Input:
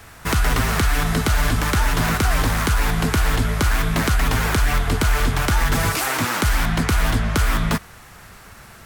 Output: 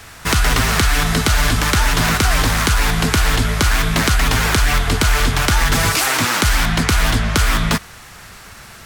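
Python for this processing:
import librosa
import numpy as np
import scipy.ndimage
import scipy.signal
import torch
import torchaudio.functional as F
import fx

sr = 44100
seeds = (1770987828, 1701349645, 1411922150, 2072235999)

y = fx.peak_eq(x, sr, hz=4700.0, db=6.0, octaves=2.5)
y = F.gain(torch.from_numpy(y), 2.5).numpy()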